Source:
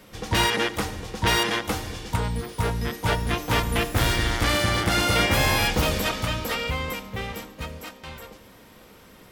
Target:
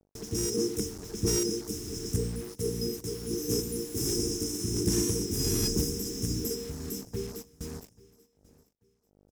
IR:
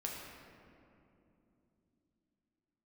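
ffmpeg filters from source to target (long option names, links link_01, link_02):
-filter_complex "[0:a]asettb=1/sr,asplit=3[link_01][link_02][link_03];[link_01]atrim=end=2.494[link_04];[link_02]atrim=start=2.49:end=4.6,asetpts=PTS-STARTPTS,afade=type=in:duration=0.004:curve=qsin,afade=type=out:start_time=2.106:duration=0.004:curve=qsin,lowshelf=frequency=110:gain=-11.5[link_05];[link_03]atrim=start=4.596[link_06];[link_04][link_05]acrossfade=duration=0.004:curve1=hsin:curve2=qsin[link_07];[link_07][link_06]acrossfade=duration=0.004:curve1=qsin:curve2=hsin,afftfilt=real='re*(1-between(b*sr/4096,470,5000))':imag='im*(1-between(b*sr/4096,470,5000))':win_size=4096:overlap=0.75,agate=range=-30dB:threshold=-39dB:ratio=16:detection=peak,acrossover=split=280|3000[link_08][link_09][link_10];[link_09]acompressor=threshold=-35dB:ratio=2[link_11];[link_08][link_11][link_10]amix=inputs=3:normalize=0,aeval=exprs='val(0)+0.00447*(sin(2*PI*50*n/s)+sin(2*PI*2*50*n/s)/2+sin(2*PI*3*50*n/s)/3+sin(2*PI*4*50*n/s)/4+sin(2*PI*5*50*n/s)/5)':channel_layout=same,tremolo=f=1.4:d=0.56,asplit=2[link_12][link_13];[link_13]highpass=frequency=720:poles=1,volume=16dB,asoftclip=type=tanh:threshold=-12.5dB[link_14];[link_12][link_14]amix=inputs=2:normalize=0,lowpass=frequency=3900:poles=1,volume=-6dB,acrusher=bits=6:mix=0:aa=0.5,aecho=1:1:838|1676:0.0708|0.0191"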